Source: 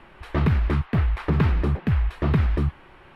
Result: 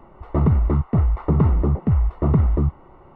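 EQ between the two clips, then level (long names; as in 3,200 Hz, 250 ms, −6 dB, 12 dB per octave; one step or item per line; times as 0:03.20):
Savitzky-Golay smoothing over 65 samples
+3.5 dB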